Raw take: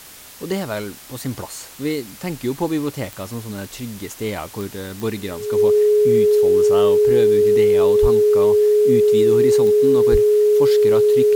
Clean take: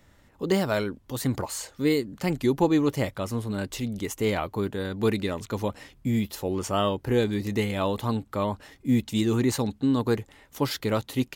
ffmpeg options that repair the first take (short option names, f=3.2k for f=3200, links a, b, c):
-filter_complex "[0:a]adeclick=t=4,bandreject=f=420:w=30,asplit=3[a][b][c];[a]afade=t=out:st=8.01:d=0.02[d];[b]highpass=f=140:w=0.5412,highpass=f=140:w=1.3066,afade=t=in:st=8.01:d=0.02,afade=t=out:st=8.13:d=0.02[e];[c]afade=t=in:st=8.13:d=0.02[f];[d][e][f]amix=inputs=3:normalize=0,asplit=3[g][h][i];[g]afade=t=out:st=10.11:d=0.02[j];[h]highpass=f=140:w=0.5412,highpass=f=140:w=1.3066,afade=t=in:st=10.11:d=0.02,afade=t=out:st=10.23:d=0.02[k];[i]afade=t=in:st=10.23:d=0.02[l];[j][k][l]amix=inputs=3:normalize=0,afwtdn=0.01"